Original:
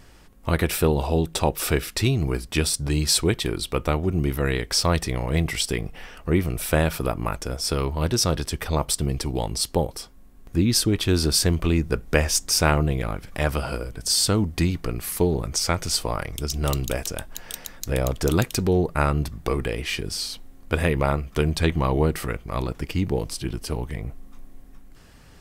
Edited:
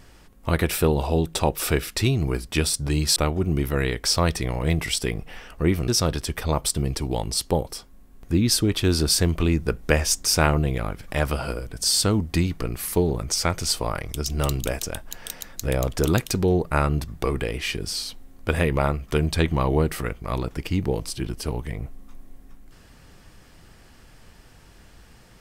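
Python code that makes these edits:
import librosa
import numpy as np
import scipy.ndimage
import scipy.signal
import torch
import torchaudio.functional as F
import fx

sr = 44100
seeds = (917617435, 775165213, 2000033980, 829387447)

y = fx.edit(x, sr, fx.cut(start_s=3.16, length_s=0.67),
    fx.cut(start_s=6.55, length_s=1.57), tone=tone)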